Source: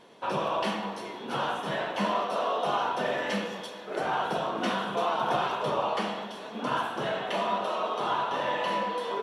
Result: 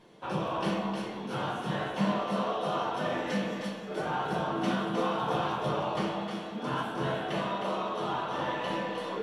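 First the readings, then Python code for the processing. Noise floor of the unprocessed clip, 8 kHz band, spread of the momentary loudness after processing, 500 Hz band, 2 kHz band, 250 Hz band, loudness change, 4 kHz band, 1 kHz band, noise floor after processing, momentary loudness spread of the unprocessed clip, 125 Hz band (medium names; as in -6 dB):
-41 dBFS, -2.5 dB, 5 LU, -2.0 dB, -3.5 dB, +3.5 dB, -2.0 dB, -3.5 dB, -4.0 dB, -40 dBFS, 6 LU, +5.5 dB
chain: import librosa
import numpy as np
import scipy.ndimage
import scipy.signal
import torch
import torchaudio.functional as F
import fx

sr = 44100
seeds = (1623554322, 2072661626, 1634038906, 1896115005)

y = fx.bass_treble(x, sr, bass_db=10, treble_db=1)
y = y + 10.0 ** (-6.0 / 20.0) * np.pad(y, (int(310 * sr / 1000.0), 0))[:len(y)]
y = fx.room_shoebox(y, sr, seeds[0], volume_m3=33.0, walls='mixed', distance_m=0.47)
y = y * librosa.db_to_amplitude(-6.5)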